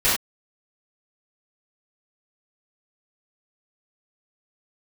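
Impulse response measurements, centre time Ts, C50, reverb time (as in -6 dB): 48 ms, 1.5 dB, not exponential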